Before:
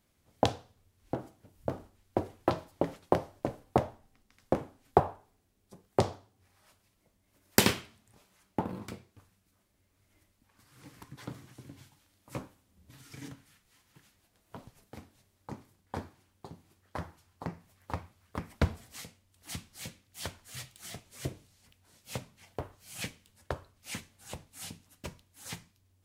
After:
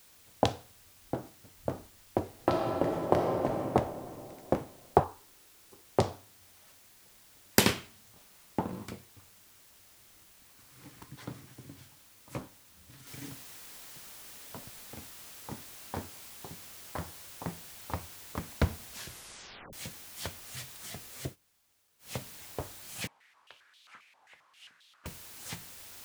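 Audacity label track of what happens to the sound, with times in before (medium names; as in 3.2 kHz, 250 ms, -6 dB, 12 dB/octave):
2.280000	3.630000	reverb throw, RT60 2.9 s, DRR -1 dB
5.040000	5.870000	static phaser centre 630 Hz, stages 6
13.070000	13.070000	noise floor step -59 dB -49 dB
18.860000	18.860000	tape stop 0.87 s
21.230000	22.120000	dip -23 dB, fades 0.13 s
23.070000	25.060000	step-sequenced band-pass 7.5 Hz 880–3500 Hz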